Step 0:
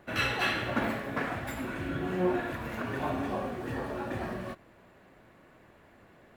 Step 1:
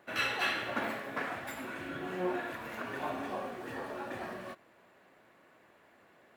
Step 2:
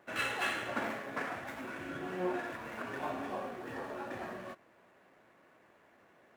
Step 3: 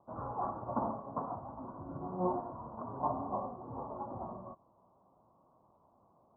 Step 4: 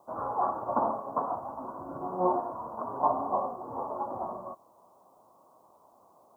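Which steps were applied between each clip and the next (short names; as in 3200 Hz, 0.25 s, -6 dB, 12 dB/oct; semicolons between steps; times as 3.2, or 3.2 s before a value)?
HPF 440 Hz 6 dB/oct; gain -2 dB
median filter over 9 samples; gain -1 dB
steep low-pass 1100 Hz 72 dB/oct; bell 400 Hz -13.5 dB 1.9 oct; upward expander 1.5:1, over -56 dBFS; gain +13 dB
tone controls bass -14 dB, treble +12 dB; gain +8.5 dB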